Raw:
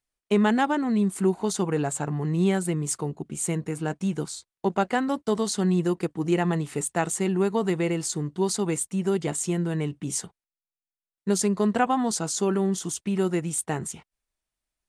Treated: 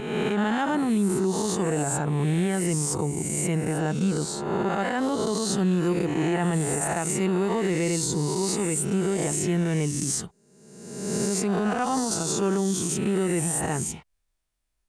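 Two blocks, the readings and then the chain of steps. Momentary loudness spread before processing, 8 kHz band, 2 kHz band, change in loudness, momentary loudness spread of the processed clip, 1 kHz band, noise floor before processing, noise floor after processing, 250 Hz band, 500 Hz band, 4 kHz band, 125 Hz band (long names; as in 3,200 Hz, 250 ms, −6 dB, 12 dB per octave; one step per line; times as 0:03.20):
7 LU, +3.0 dB, +1.0 dB, +1.0 dB, 3 LU, −0.5 dB, below −85 dBFS, −74 dBFS, +0.5 dB, 0.0 dB, +2.5 dB, +2.0 dB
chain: peak hold with a rise ahead of every peak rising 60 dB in 1.19 s
low-shelf EQ 96 Hz +9 dB
brickwall limiter −16.5 dBFS, peak gain reduction 9.5 dB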